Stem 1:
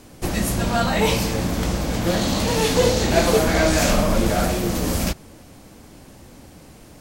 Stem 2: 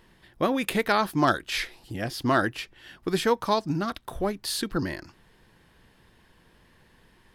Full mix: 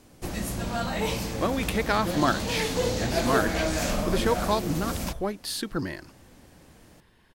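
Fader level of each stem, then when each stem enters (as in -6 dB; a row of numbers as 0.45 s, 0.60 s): -9.0 dB, -2.0 dB; 0.00 s, 1.00 s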